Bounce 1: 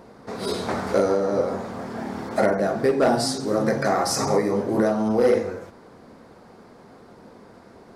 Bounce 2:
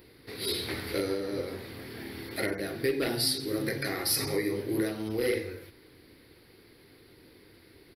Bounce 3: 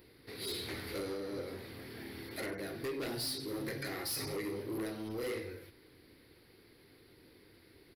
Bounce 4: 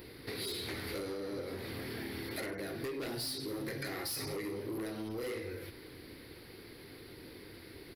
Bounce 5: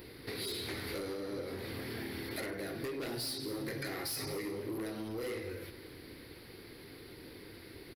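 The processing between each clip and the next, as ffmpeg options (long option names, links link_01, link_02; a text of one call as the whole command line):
ffmpeg -i in.wav -af "firequalizer=gain_entry='entry(110,0);entry(210,-15);entry(310,0);entry(650,-17);entry(1200,-13);entry(2000,4);entry(3100,5);entry(4500,7);entry(6700,-17);entry(11000,14)':delay=0.05:min_phase=1,volume=-3dB" out.wav
ffmpeg -i in.wav -af "asoftclip=type=tanh:threshold=-28.5dB,volume=-5dB" out.wav
ffmpeg -i in.wav -af "acompressor=threshold=-48dB:ratio=6,volume=10dB" out.wav
ffmpeg -i in.wav -af "aecho=1:1:229:0.178" out.wav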